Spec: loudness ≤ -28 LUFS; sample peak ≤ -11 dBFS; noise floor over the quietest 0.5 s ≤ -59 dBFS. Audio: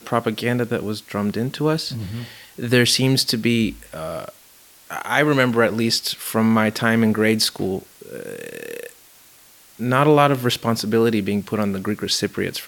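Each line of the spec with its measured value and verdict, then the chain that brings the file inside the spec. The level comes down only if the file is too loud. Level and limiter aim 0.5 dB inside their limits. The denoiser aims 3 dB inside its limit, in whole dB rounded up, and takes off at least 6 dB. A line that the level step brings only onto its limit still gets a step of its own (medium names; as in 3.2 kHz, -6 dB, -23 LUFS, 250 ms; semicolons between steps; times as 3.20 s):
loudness -20.0 LUFS: fail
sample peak -2.5 dBFS: fail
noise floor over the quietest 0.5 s -49 dBFS: fail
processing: noise reduction 6 dB, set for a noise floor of -49 dBFS; trim -8.5 dB; peak limiter -11.5 dBFS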